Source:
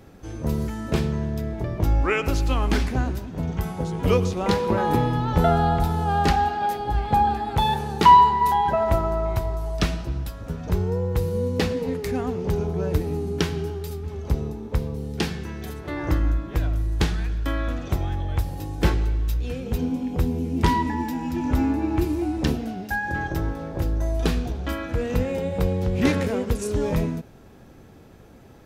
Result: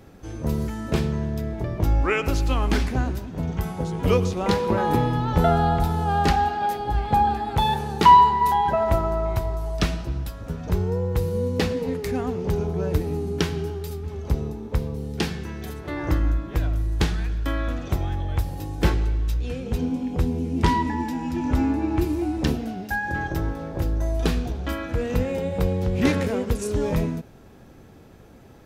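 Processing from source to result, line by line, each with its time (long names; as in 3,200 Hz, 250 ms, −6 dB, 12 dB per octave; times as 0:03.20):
0:19.00–0:22.01: low-pass filter 11,000 Hz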